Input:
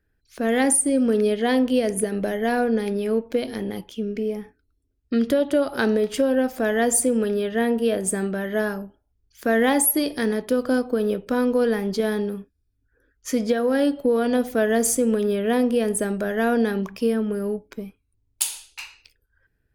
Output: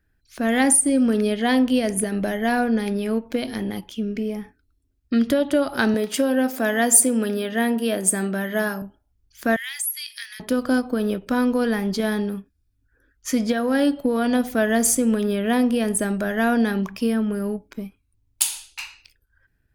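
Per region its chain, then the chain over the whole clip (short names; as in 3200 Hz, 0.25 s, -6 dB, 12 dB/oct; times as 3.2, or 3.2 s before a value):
5.94–8.82 HPF 170 Hz + high shelf 8400 Hz +7 dB + darkening echo 77 ms, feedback 83%, low-pass 1100 Hz, level -21.5 dB
9.56–10.4 inverse Chebyshev high-pass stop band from 450 Hz, stop band 70 dB + compressor 2:1, threshold -33 dBFS
whole clip: bell 460 Hz -7.5 dB 0.59 oct; ending taper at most 430 dB/s; gain +3 dB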